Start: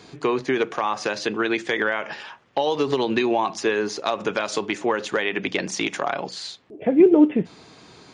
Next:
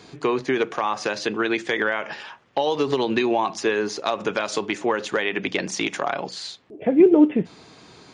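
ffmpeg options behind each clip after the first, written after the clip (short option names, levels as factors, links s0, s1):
-af anull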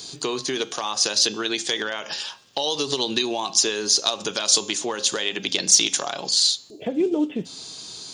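-af "bandreject=f=268.5:t=h:w=4,bandreject=f=537:t=h:w=4,bandreject=f=805.5:t=h:w=4,bandreject=f=1074:t=h:w=4,bandreject=f=1342.5:t=h:w=4,bandreject=f=1611:t=h:w=4,bandreject=f=1879.5:t=h:w=4,bandreject=f=2148:t=h:w=4,bandreject=f=2416.5:t=h:w=4,bandreject=f=2685:t=h:w=4,bandreject=f=2953.5:t=h:w=4,bandreject=f=3222:t=h:w=4,bandreject=f=3490.5:t=h:w=4,bandreject=f=3759:t=h:w=4,bandreject=f=4027.5:t=h:w=4,bandreject=f=4296:t=h:w=4,bandreject=f=4564.5:t=h:w=4,bandreject=f=4833:t=h:w=4,bandreject=f=5101.5:t=h:w=4,bandreject=f=5370:t=h:w=4,bandreject=f=5638.5:t=h:w=4,bandreject=f=5907:t=h:w=4,bandreject=f=6175.5:t=h:w=4,bandreject=f=6444:t=h:w=4,bandreject=f=6712.5:t=h:w=4,bandreject=f=6981:t=h:w=4,bandreject=f=7249.5:t=h:w=4,bandreject=f=7518:t=h:w=4,acompressor=threshold=0.0447:ratio=1.5,aexciter=amount=8.2:drive=5.6:freq=3200,volume=0.794"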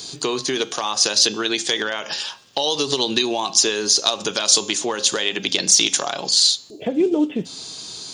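-af "alimiter=level_in=1.68:limit=0.891:release=50:level=0:latency=1,volume=0.891"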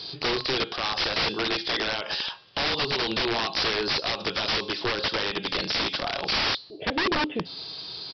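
-af "equalizer=f=240:t=o:w=0.45:g=-8.5,aresample=11025,aeval=exprs='(mod(7.94*val(0)+1,2)-1)/7.94':c=same,aresample=44100,volume=0.841"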